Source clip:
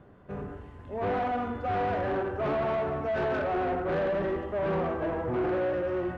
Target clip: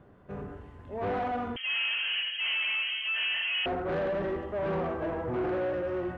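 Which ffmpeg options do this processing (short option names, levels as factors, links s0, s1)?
-filter_complex "[0:a]asettb=1/sr,asplit=3[s0][s1][s2];[s0]atrim=end=1.564[s3];[s1]atrim=start=1.56:end=3.66,asetpts=PTS-STARTPTS,afade=t=in:d=0.004:c=qsin,afade=t=out:st=2.096:d=0.004:c=qsin,lowpass=f=2800:t=q:w=0.5098,lowpass=f=2800:t=q:w=0.6013,lowpass=f=2800:t=q:w=0.9,lowpass=f=2800:t=q:w=2.563,afreqshift=-3300[s4];[s2]atrim=start=3.656[s5];[s3][s4]acrossfade=d=0.004:c1=hsin:c2=qsin[s6];[s6][s5]acrossfade=d=0.004:c1=qsin:c2=hsin,volume=0.794"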